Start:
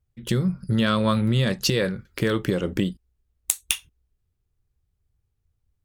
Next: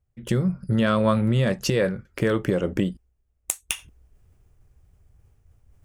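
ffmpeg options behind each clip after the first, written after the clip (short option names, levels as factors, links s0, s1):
-af "equalizer=f=630:t=o:w=0.67:g=5,equalizer=f=4000:t=o:w=0.67:g=-9,equalizer=f=16000:t=o:w=0.67:g=-10,areverse,acompressor=mode=upward:threshold=0.00891:ratio=2.5,areverse"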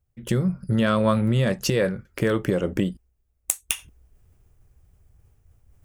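-af "highshelf=f=11000:g=7.5"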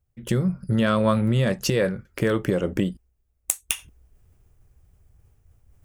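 -af anull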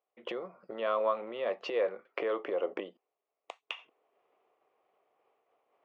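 -af "acompressor=threshold=0.0501:ratio=10,highpass=f=400:w=0.5412,highpass=f=400:w=1.3066,equalizer=f=490:t=q:w=4:g=3,equalizer=f=710:t=q:w=4:g=7,equalizer=f=1100:t=q:w=4:g=7,equalizer=f=1600:t=q:w=4:g=-8,lowpass=f=3000:w=0.5412,lowpass=f=3000:w=1.3066"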